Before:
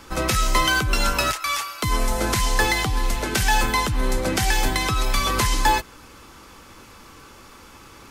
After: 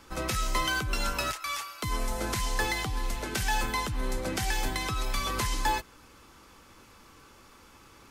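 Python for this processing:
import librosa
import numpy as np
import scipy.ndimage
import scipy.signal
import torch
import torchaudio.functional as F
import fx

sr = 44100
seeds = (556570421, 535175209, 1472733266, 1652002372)

y = F.gain(torch.from_numpy(x), -9.0).numpy()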